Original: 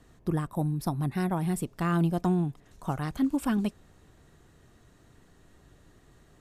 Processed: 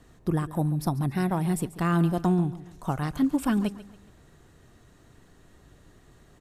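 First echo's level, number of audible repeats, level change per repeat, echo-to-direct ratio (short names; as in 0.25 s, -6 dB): -16.0 dB, 3, -8.5 dB, -15.5 dB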